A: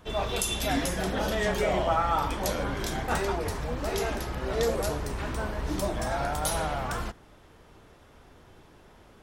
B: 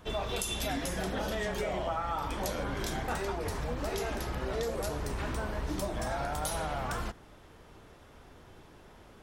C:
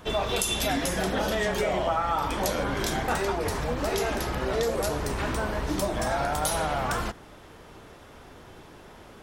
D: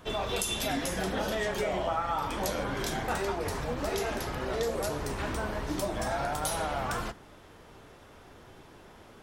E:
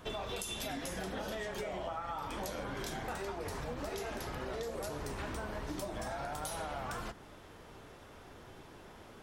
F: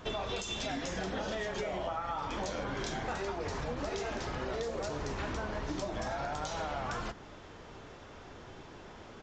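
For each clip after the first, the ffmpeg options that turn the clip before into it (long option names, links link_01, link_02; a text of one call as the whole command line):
ffmpeg -i in.wav -af "acompressor=threshold=-30dB:ratio=6" out.wav
ffmpeg -i in.wav -af "lowshelf=frequency=110:gain=-5.5,volume=7.5dB" out.wav
ffmpeg -i in.wav -af "flanger=delay=7.3:depth=3.1:regen=-70:speed=1.4:shape=sinusoidal" out.wav
ffmpeg -i in.wav -af "acompressor=threshold=-36dB:ratio=5,volume=-1dB" out.wav
ffmpeg -i in.wav -af "aresample=16000,aresample=44100,volume=3.5dB" out.wav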